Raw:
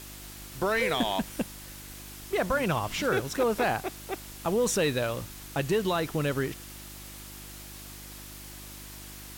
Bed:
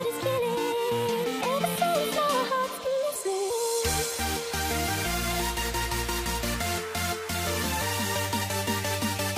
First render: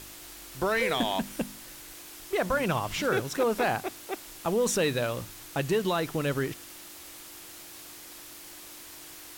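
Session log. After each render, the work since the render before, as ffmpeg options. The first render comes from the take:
-af "bandreject=f=50:t=h:w=4,bandreject=f=100:t=h:w=4,bandreject=f=150:t=h:w=4,bandreject=f=200:t=h:w=4,bandreject=f=250:t=h:w=4"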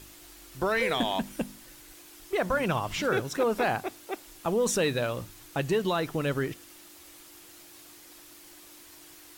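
-af "afftdn=nr=6:nf=-46"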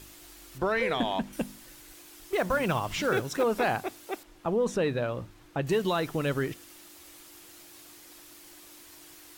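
-filter_complex "[0:a]asettb=1/sr,asplit=3[a][b][c];[a]atrim=end=0.584[d];[b]atrim=start=0.58:end=1.33,asetpts=PTS-STARTPTS,afade=t=in:d=0.004:c=qsin,afade=t=out:st=0.746:d=0.004:c=qsin,lowpass=f=2.9k:p=1[e];[c]atrim=start=1.326[f];[d][e]acrossfade=d=0.004:c1=hsin:c2=qsin[g];[g][f]acrossfade=d=0.004:c1=qsin:c2=hsin,asettb=1/sr,asplit=3[h][i][j];[h]atrim=end=1.844[k];[i]atrim=start=1.84:end=3.42,asetpts=PTS-STARTPTS,afade=t=in:d=0.004:c=qsin,afade=t=out:st=1.576:d=0.004:c=qsin,acrusher=bits=6:mode=log:mix=0:aa=0.000001[l];[j]atrim=start=3.416[m];[k][l]acrossfade=d=0.004:c1=hsin:c2=qsin[n];[n][m]acrossfade=d=0.004:c1=qsin:c2=hsin,asettb=1/sr,asplit=3[o][p][q];[o]atrim=end=4.234[r];[p]atrim=start=4.23:end=5.67,asetpts=PTS-STARTPTS,afade=t=in:d=0.004:c=qsin,afade=t=out:st=1.436:d=0.004:c=qsin,lowpass=f=1.5k:p=1[s];[q]atrim=start=5.666[t];[r][s]acrossfade=d=0.004:c1=hsin:c2=qsin[u];[u][t]acrossfade=d=0.004:c1=qsin:c2=hsin"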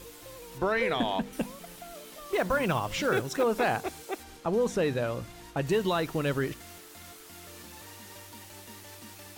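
-filter_complex "[1:a]volume=-21dB[a];[0:a][a]amix=inputs=2:normalize=0"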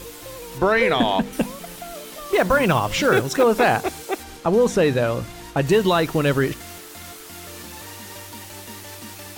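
-af "volume=9.5dB"

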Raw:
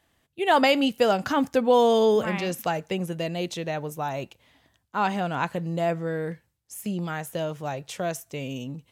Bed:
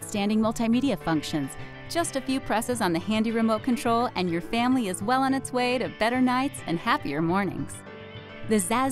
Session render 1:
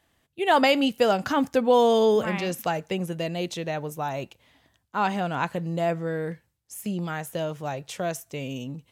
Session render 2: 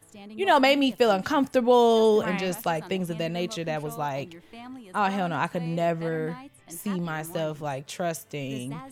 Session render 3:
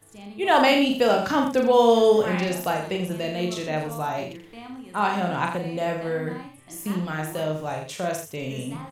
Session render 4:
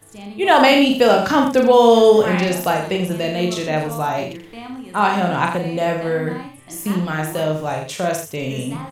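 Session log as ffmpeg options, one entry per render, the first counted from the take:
-af anull
-filter_complex "[1:a]volume=-18.5dB[a];[0:a][a]amix=inputs=2:normalize=0"
-filter_complex "[0:a]asplit=2[a][b];[b]adelay=39,volume=-4dB[c];[a][c]amix=inputs=2:normalize=0,asplit=2[d][e];[e]aecho=0:1:84:0.398[f];[d][f]amix=inputs=2:normalize=0"
-af "volume=6.5dB,alimiter=limit=-2dB:level=0:latency=1"

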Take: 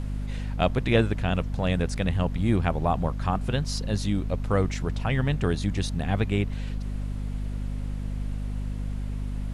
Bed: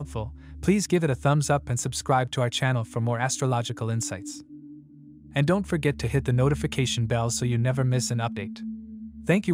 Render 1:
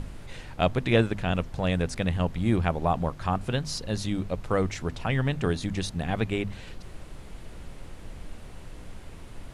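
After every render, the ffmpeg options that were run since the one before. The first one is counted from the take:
-af "bandreject=f=50:t=h:w=6,bandreject=f=100:t=h:w=6,bandreject=f=150:t=h:w=6,bandreject=f=200:t=h:w=6,bandreject=f=250:t=h:w=6"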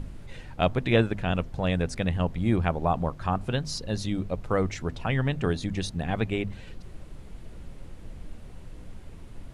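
-af "afftdn=nr=6:nf=-44"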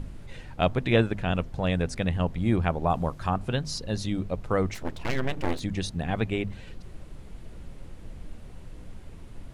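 -filter_complex "[0:a]asettb=1/sr,asplit=3[a][b][c];[a]atrim=end=2.904[d];[b]atrim=start=2.9:end=3.3,asetpts=PTS-STARTPTS,afade=t=in:d=0.004:c=qsin,afade=t=out:st=0.396:d=0.004:c=qsin,highshelf=f=5k:g=7.5[e];[c]atrim=start=3.296[f];[d][e]acrossfade=d=0.004:c1=hsin:c2=qsin[g];[g][f]acrossfade=d=0.004:c1=qsin:c2=hsin,asplit=3[h][i][j];[h]afade=t=out:st=4.73:d=0.02[k];[i]aeval=exprs='abs(val(0))':c=same,afade=t=in:st=4.73:d=0.02,afade=t=out:st=5.59:d=0.02[l];[j]afade=t=in:st=5.59:d=0.02[m];[k][l][m]amix=inputs=3:normalize=0"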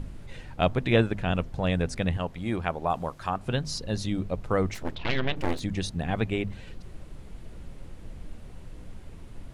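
-filter_complex "[0:a]asettb=1/sr,asplit=3[a][b][c];[a]atrim=end=2.174[d];[b]atrim=start=2.17:end=3.46,asetpts=PTS-STARTPTS,afade=t=in:d=0.004:c=qsin,afade=t=out:st=1.286:d=0.004:c=qsin,lowshelf=f=290:g=-9.5[e];[c]atrim=start=3.456[f];[d][e]acrossfade=d=0.004:c1=hsin:c2=qsin[g];[g][f]acrossfade=d=0.004:c1=qsin:c2=hsin,asettb=1/sr,asplit=3[h][i][j];[h]atrim=end=4.954[k];[i]atrim=start=4.95:end=5.36,asetpts=PTS-STARTPTS,afade=t=in:d=0.004:c=qsin,afade=t=out:st=0.406:d=0.004:c=qsin,lowpass=f=3.6k:t=q:w=2.4[l];[j]atrim=start=5.356[m];[k][l]acrossfade=d=0.004:c1=hsin:c2=qsin[n];[n][m]acrossfade=d=0.004:c1=qsin:c2=hsin"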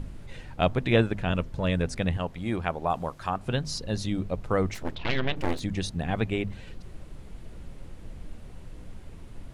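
-filter_complex "[0:a]asettb=1/sr,asplit=3[a][b][c];[a]atrim=end=1.294[d];[b]atrim=start=1.29:end=1.84,asetpts=PTS-STARTPTS,afade=t=in:d=0.004:c=qsin,afade=t=out:st=0.546:d=0.004:c=qsin,asuperstop=centerf=750:order=4:qfactor=5.1[e];[c]atrim=start=1.836[f];[d][e]acrossfade=d=0.004:c1=hsin:c2=qsin[g];[g][f]acrossfade=d=0.004:c1=qsin:c2=hsin"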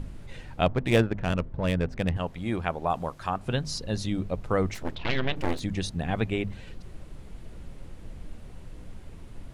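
-filter_complex "[0:a]asplit=3[a][b][c];[a]afade=t=out:st=0.65:d=0.02[d];[b]adynamicsmooth=sensitivity=3.5:basefreq=1.5k,afade=t=in:st=0.65:d=0.02,afade=t=out:st=2.15:d=0.02[e];[c]afade=t=in:st=2.15:d=0.02[f];[d][e][f]amix=inputs=3:normalize=0"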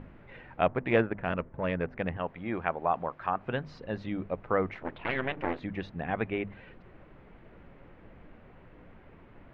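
-af "lowpass=f=2.2k:w=0.5412,lowpass=f=2.2k:w=1.3066,aemphasis=mode=production:type=bsi"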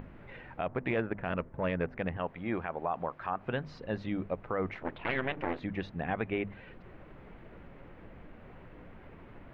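-af "alimiter=limit=-21dB:level=0:latency=1:release=89,acompressor=mode=upward:threshold=-44dB:ratio=2.5"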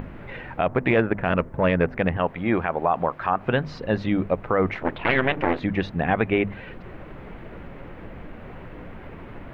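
-af "volume=11.5dB"

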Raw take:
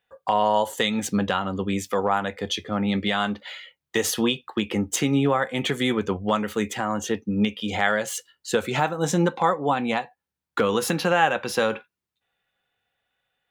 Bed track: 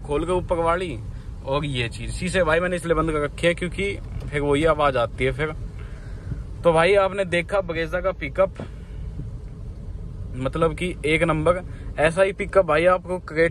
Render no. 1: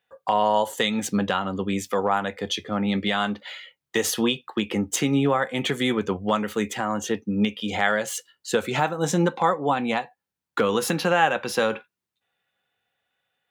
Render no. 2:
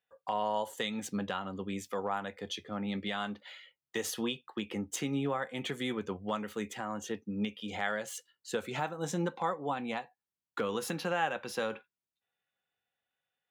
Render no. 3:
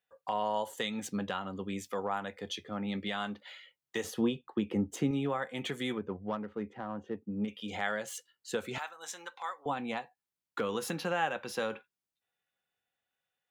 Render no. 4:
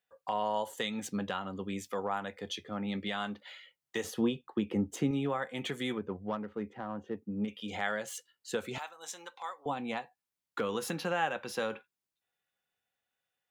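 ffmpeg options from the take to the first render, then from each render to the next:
-af "highpass=95"
-af "volume=-11.5dB"
-filter_complex "[0:a]asettb=1/sr,asplit=3[a][b][c];[a]atrim=end=4.044[d];[b]atrim=start=4.04:end=5.11,asetpts=PTS-STARTPTS,afade=t=in:d=0.004:c=qsin,afade=t=out:st=1.066:d=0.004:c=qsin,tiltshelf=f=930:g=7[e];[c]atrim=start=5.106[f];[d][e]acrossfade=d=0.004:c1=hsin:c2=qsin[g];[g][f]acrossfade=d=0.004:c1=qsin:c2=hsin,asettb=1/sr,asplit=3[h][i][j];[h]atrim=end=5.984[k];[i]atrim=start=5.98:end=7.48,asetpts=PTS-STARTPTS,afade=t=in:d=0.004:c=qsin,afade=t=out:st=1.496:d=0.004:c=qsin,adynamicsmooth=sensitivity=1:basefreq=1.1k[l];[j]atrim=start=7.476[m];[k][l]acrossfade=d=0.004:c1=hsin:c2=qsin[n];[n][m]acrossfade=d=0.004:c1=qsin:c2=hsin,asettb=1/sr,asplit=3[o][p][q];[o]atrim=end=8.784[r];[p]atrim=start=8.78:end=9.66,asetpts=PTS-STARTPTS,afade=t=in:d=0.004:c=qsin,afade=t=out:st=0.876:d=0.004:c=qsin,highpass=1.2k[s];[q]atrim=start=9.656[t];[r][s]acrossfade=d=0.004:c1=hsin:c2=qsin[u];[u][t]acrossfade=d=0.004:c1=qsin:c2=hsin"
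-filter_complex "[0:a]asettb=1/sr,asplit=3[a][b][c];[a]atrim=end=8.694[d];[b]atrim=start=8.69:end=9.86,asetpts=PTS-STARTPTS,afade=t=in:d=0.004:c=qsin,afade=t=out:st=1.166:d=0.004:c=qsin,equalizer=f=1.6k:t=o:w=0.9:g=-5[e];[c]atrim=start=9.856[f];[d][e]acrossfade=d=0.004:c1=hsin:c2=qsin[g];[g][f]acrossfade=d=0.004:c1=qsin:c2=hsin"

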